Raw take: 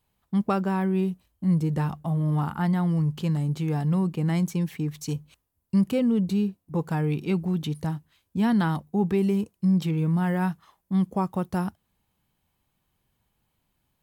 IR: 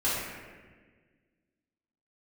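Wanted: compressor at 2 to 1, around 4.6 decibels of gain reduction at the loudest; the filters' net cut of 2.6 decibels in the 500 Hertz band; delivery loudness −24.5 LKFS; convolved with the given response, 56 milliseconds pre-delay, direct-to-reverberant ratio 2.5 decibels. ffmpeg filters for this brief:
-filter_complex "[0:a]equalizer=frequency=500:width_type=o:gain=-3.5,acompressor=threshold=-27dB:ratio=2,asplit=2[link_01][link_02];[1:a]atrim=start_sample=2205,adelay=56[link_03];[link_02][link_03]afir=irnorm=-1:irlink=0,volume=-13.5dB[link_04];[link_01][link_04]amix=inputs=2:normalize=0,volume=3.5dB"

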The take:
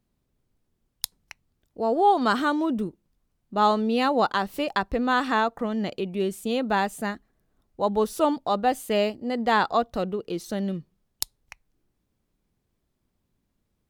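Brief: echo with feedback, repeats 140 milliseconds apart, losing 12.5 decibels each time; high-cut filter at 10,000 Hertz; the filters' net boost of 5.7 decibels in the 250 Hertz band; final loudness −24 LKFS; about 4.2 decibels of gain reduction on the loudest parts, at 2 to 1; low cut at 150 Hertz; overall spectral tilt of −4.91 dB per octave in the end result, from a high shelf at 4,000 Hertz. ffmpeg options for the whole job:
ffmpeg -i in.wav -af "highpass=150,lowpass=10000,equalizer=frequency=250:width_type=o:gain=7.5,highshelf=frequency=4000:gain=-6,acompressor=threshold=-22dB:ratio=2,aecho=1:1:140|280|420:0.237|0.0569|0.0137,volume=1.5dB" out.wav

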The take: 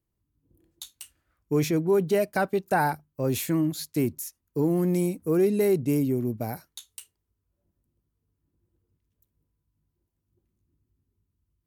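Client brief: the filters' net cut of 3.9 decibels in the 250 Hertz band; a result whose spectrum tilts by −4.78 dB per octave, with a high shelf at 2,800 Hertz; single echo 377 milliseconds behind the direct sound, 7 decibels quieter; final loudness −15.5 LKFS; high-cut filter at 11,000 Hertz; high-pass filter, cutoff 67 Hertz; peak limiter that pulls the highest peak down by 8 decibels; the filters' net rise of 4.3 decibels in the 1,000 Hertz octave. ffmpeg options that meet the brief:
ffmpeg -i in.wav -af "highpass=67,lowpass=11000,equalizer=frequency=250:width_type=o:gain=-6.5,equalizer=frequency=1000:width_type=o:gain=5.5,highshelf=frequency=2800:gain=7,alimiter=limit=-17dB:level=0:latency=1,aecho=1:1:377:0.447,volume=12.5dB" out.wav

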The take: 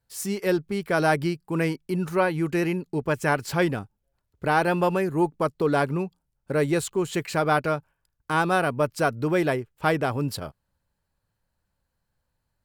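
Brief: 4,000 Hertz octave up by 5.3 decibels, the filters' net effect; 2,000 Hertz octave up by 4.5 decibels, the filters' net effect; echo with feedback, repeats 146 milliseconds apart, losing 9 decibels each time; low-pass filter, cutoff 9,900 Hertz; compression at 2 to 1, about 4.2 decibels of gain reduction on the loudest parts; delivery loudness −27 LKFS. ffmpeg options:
ffmpeg -i in.wav -af "lowpass=9900,equalizer=frequency=2000:width_type=o:gain=5.5,equalizer=frequency=4000:width_type=o:gain=5,acompressor=threshold=-23dB:ratio=2,aecho=1:1:146|292|438|584:0.355|0.124|0.0435|0.0152,volume=-0.5dB" out.wav

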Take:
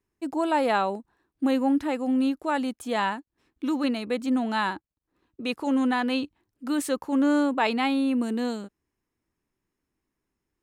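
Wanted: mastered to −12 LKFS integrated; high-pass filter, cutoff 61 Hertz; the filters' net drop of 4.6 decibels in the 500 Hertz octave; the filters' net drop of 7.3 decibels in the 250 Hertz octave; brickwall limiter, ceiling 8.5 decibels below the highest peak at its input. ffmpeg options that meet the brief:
ffmpeg -i in.wav -af "highpass=61,equalizer=frequency=250:width_type=o:gain=-7,equalizer=frequency=500:width_type=o:gain=-4,volume=20.5dB,alimiter=limit=0dB:level=0:latency=1" out.wav

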